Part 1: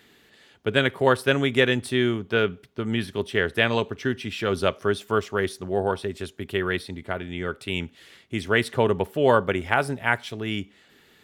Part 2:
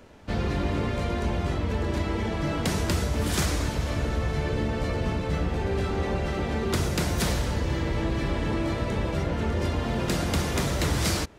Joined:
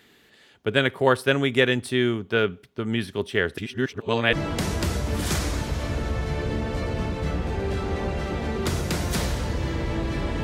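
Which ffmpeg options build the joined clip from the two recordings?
-filter_complex "[0:a]apad=whole_dur=10.43,atrim=end=10.43,asplit=2[s0][s1];[s0]atrim=end=3.582[s2];[s1]atrim=start=3.578:end=4.332,asetpts=PTS-STARTPTS,areverse[s3];[1:a]atrim=start=2.398:end=8.5[s4];[s2][s3]acrossfade=d=0.004:c1=hsin:c2=hsin[s5];[s5][s4]acrossfade=d=0.004:c1=hsin:c2=hsin"

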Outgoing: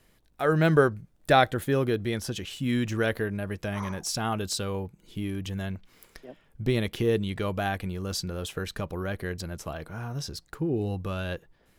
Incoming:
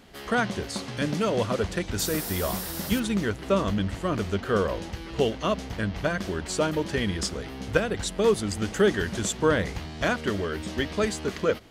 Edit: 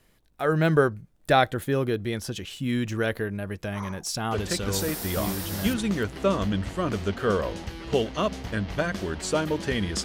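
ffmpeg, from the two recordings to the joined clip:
-filter_complex "[0:a]apad=whole_dur=10.04,atrim=end=10.04,atrim=end=6.17,asetpts=PTS-STARTPTS[s0];[1:a]atrim=start=1.57:end=7.3,asetpts=PTS-STARTPTS[s1];[s0][s1]acrossfade=d=1.86:c1=log:c2=log"

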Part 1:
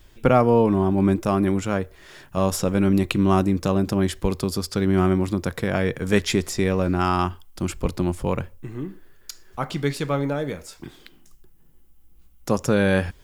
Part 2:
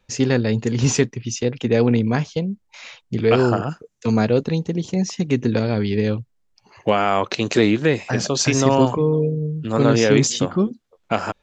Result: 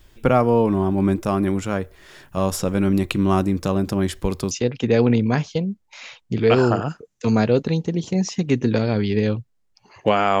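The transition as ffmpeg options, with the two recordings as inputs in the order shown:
-filter_complex "[0:a]apad=whole_dur=10.4,atrim=end=10.4,atrim=end=4.512[s0];[1:a]atrim=start=1.318:end=7.21[s1];[s0][s1]acrossfade=d=0.004:c1=hsin:c2=hsin"

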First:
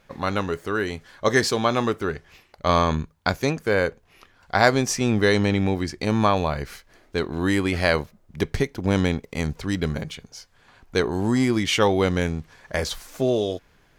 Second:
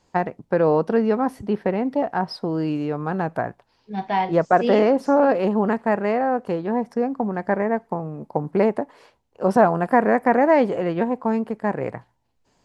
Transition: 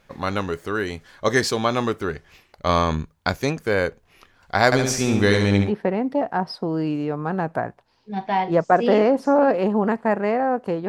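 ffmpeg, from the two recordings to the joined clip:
-filter_complex "[0:a]asettb=1/sr,asplit=3[s0][s1][s2];[s0]atrim=end=4.654[s3];[s1]atrim=start=4.65:end=5.73,asetpts=PTS-STARTPTS,afade=t=in:d=0.004:c=qsin,afade=t=out:st=1.076:d=0.004:c=qsin,aecho=1:1:70|140|210|280|350:0.596|0.262|0.115|0.0507|0.0223,atrim=end_sample=47628[s4];[s2]atrim=start=5.726[s5];[s3][s4]acrossfade=d=0.004:c1=hsin:c2=qsin[s6];[s6][s5]acrossfade=d=0.004:c1=qsin:c2=hsin,apad=whole_dur=10.88,atrim=end=10.88,atrim=end=5.73,asetpts=PTS-STARTPTS[s7];[1:a]atrim=start=1.42:end=6.69,asetpts=PTS-STARTPTS[s8];[s7][s8]acrossfade=d=0.12:c1=tri:c2=tri"

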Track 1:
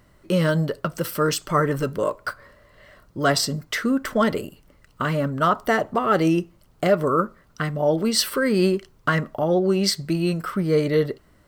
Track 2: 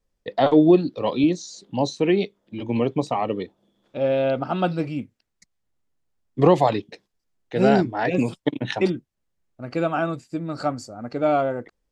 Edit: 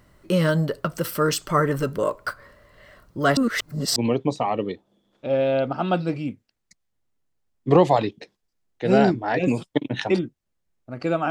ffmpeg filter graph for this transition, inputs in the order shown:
-filter_complex "[0:a]apad=whole_dur=11.3,atrim=end=11.3,asplit=2[s0][s1];[s0]atrim=end=3.372[s2];[s1]atrim=start=3.368:end=3.962,asetpts=PTS-STARTPTS,areverse[s3];[1:a]atrim=start=2.668:end=10.01[s4];[s2][s3]acrossfade=d=0.004:c1=hsin:c2=hsin[s5];[s5][s4]acrossfade=d=0.004:c1=hsin:c2=hsin"

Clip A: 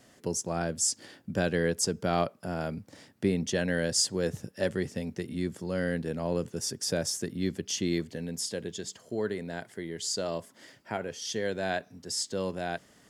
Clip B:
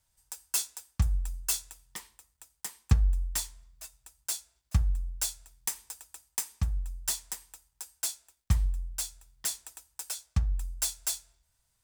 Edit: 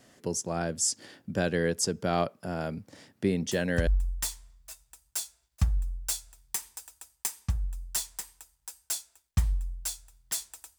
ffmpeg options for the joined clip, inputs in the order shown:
-filter_complex "[1:a]asplit=2[s0][s1];[0:a]apad=whole_dur=10.78,atrim=end=10.78,atrim=end=3.872[s2];[s1]atrim=start=2.998:end=9.91[s3];[s0]atrim=start=2.58:end=3,asetpts=PTS-STARTPTS,volume=0.422,afade=t=in:d=0.004:c=hsin,afade=t=out:st=0.416:d=0.004:c=hsin,adelay=152145S[s4];[s2][s3]acrossfade=d=0.004:c1=hsin:c2=hsin[s5];[s5][s4]amix=inputs=2:normalize=0"

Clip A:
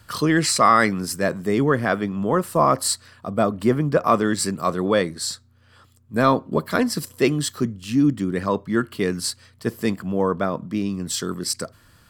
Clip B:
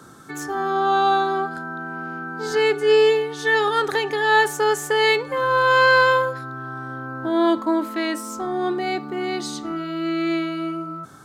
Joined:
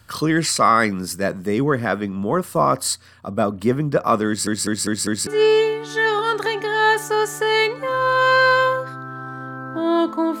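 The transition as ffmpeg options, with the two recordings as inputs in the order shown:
-filter_complex "[0:a]apad=whole_dur=10.4,atrim=end=10.4,asplit=5[s0][s1][s2][s3][s4];[s0]atrim=end=4.472[s5];[s1]atrim=start=4.268:end=4.472[s6];[s2]atrim=start=4.268:end=4.472[s7];[s3]atrim=start=4.268:end=4.472[s8];[s4]atrim=start=4.268:end=4.472[s9];[1:a]atrim=start=2.758:end=7.89[s10];[s5][s6]acrossfade=d=0.004:c1=hsin:c2=hsin[s11];[s11][s7]acrossfade=d=0.004:c1=hsin:c2=hsin[s12];[s12][s8]acrossfade=d=0.004:c1=hsin:c2=hsin[s13];[s13][s9]acrossfade=d=0.004:c1=hsin:c2=hsin[s14];[s14][s10]acrossfade=d=0.004:c1=hsin:c2=hsin"

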